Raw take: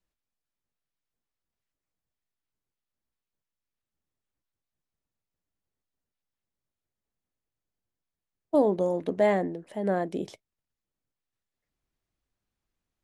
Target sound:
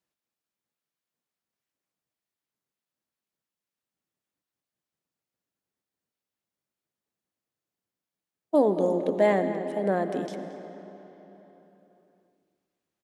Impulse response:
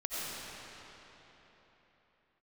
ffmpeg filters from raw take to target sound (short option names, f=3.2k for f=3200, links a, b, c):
-filter_complex "[0:a]highpass=150,asplit=2[a][b];[b]adelay=225,lowpass=f=2.3k:p=1,volume=-11dB,asplit=2[c][d];[d]adelay=225,lowpass=f=2.3k:p=1,volume=0.41,asplit=2[e][f];[f]adelay=225,lowpass=f=2.3k:p=1,volume=0.41,asplit=2[g][h];[h]adelay=225,lowpass=f=2.3k:p=1,volume=0.41[i];[a][c][e][g][i]amix=inputs=5:normalize=0,asplit=2[j][k];[1:a]atrim=start_sample=2205[l];[k][l]afir=irnorm=-1:irlink=0,volume=-13.5dB[m];[j][m]amix=inputs=2:normalize=0"